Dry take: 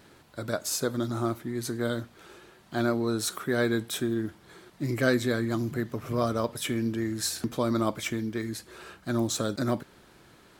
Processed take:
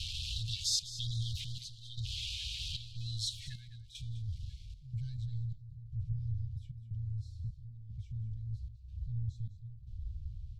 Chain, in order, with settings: jump at every zero crossing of -31 dBFS; inverse Chebyshev band-stop 290–1200 Hz, stop band 70 dB; trance gate "xxxx.xxx.." 76 bpm -12 dB; spectral gate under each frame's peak -30 dB strong; delay 204 ms -14 dB; low-pass sweep 2.9 kHz -> 400 Hz, 2.75–6.20 s; trim +8.5 dB

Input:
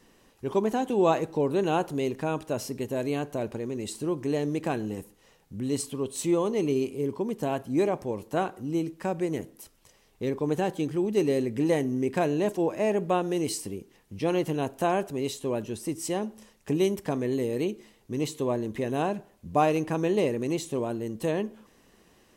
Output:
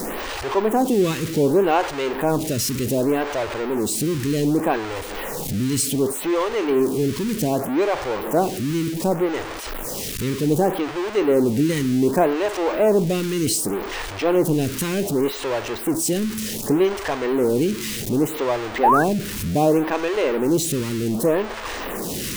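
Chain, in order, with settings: jump at every zero crossing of -26.5 dBFS; painted sound rise, 18.83–19.04 s, 730–1800 Hz -20 dBFS; lamp-driven phase shifter 0.66 Hz; trim +7 dB

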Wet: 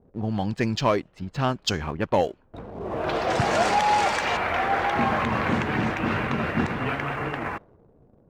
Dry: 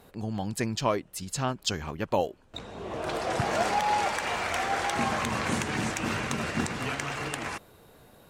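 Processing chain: level-controlled noise filter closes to 380 Hz, open at -24 dBFS; low-pass 8 kHz 12 dB/octave, from 4.37 s 2.4 kHz; waveshaping leveller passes 1; trim +2 dB

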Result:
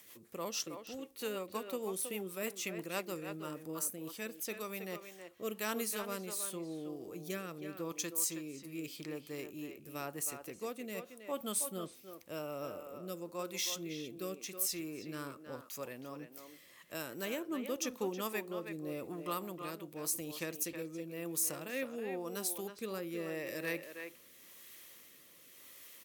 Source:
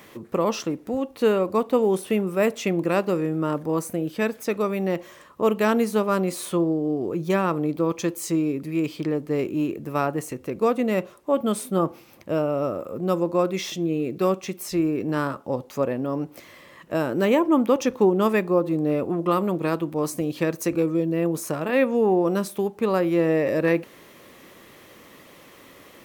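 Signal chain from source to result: rotary cabinet horn 6.3 Hz, later 0.9 Hz, at 3.48 s; pre-emphasis filter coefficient 0.9; speakerphone echo 320 ms, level -7 dB; trim +1 dB

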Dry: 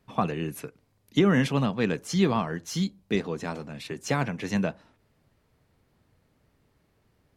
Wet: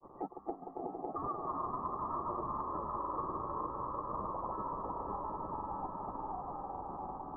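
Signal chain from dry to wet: zero-crossing glitches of -16 dBFS; high-pass 180 Hz; spectral noise reduction 28 dB; compression, threshold -29 dBFS, peak gain reduction 11 dB; echo with a slow build-up 129 ms, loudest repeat 5, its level -7 dB; ring modulator 1.5 kHz; rippled Chebyshev low-pass 1.2 kHz, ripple 3 dB; ever faster or slower copies 285 ms, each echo -1 st, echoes 3; granulator, pitch spread up and down by 0 st; three bands compressed up and down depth 70%; trim +3 dB

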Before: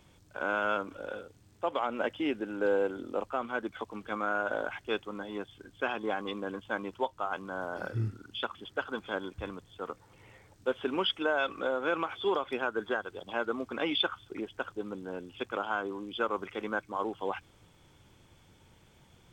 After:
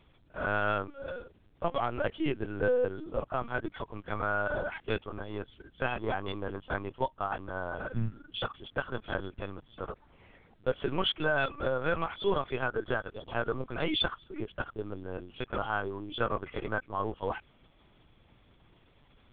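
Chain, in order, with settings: in parallel at -10 dB: hysteresis with a dead band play -39 dBFS; on the sum: LPC vocoder at 8 kHz pitch kept; trim -1.5 dB

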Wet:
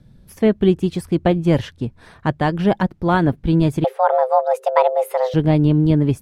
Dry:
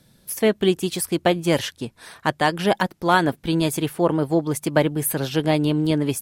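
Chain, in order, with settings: RIAA curve playback; 3.84–5.34 s: frequency shift +380 Hz; trim -1.5 dB

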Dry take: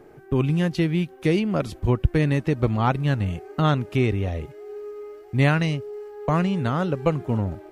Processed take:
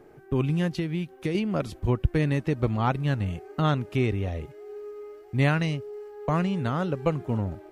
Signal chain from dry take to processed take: 0.69–1.35 s: compression, threshold -21 dBFS, peak gain reduction 6 dB; trim -3.5 dB

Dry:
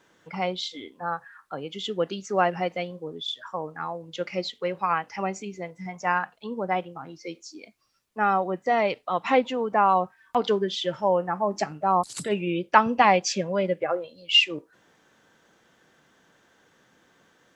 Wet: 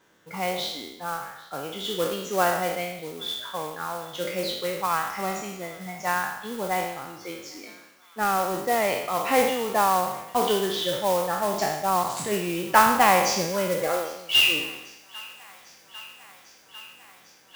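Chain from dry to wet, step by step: spectral sustain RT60 0.87 s; modulation noise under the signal 12 dB; feedback echo behind a high-pass 799 ms, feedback 80%, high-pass 1.5 kHz, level -21.5 dB; trim -2.5 dB

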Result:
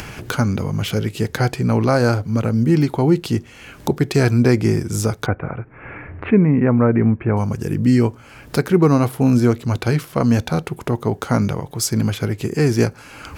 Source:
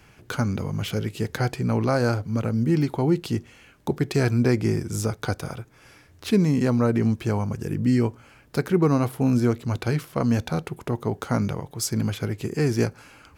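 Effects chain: 5.26–7.37 s: steep low-pass 2.4 kHz 48 dB/octave; upward compressor, threshold -27 dBFS; trim +6 dB

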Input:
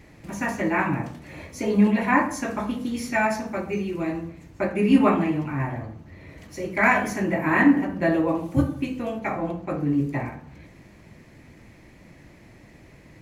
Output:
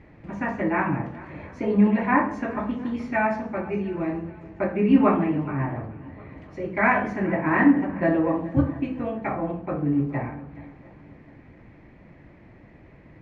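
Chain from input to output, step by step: low-pass 2 kHz 12 dB/octave; shuffle delay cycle 708 ms, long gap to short 1.5:1, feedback 31%, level -19.5 dB

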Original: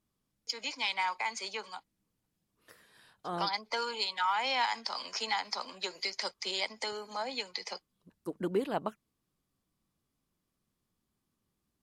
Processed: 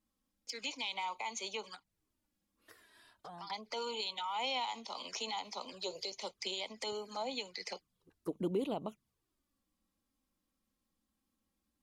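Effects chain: 1.75–3.50 s: compression 3:1, threshold -49 dBFS, peak gain reduction 15.5 dB; 5.72–6.12 s: graphic EQ 125/250/500/2000/4000 Hz +12/-11/+10/-8/+5 dB; peak limiter -26 dBFS, peak gain reduction 9 dB; touch-sensitive flanger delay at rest 3.8 ms, full sweep at -37 dBFS; trim +1 dB

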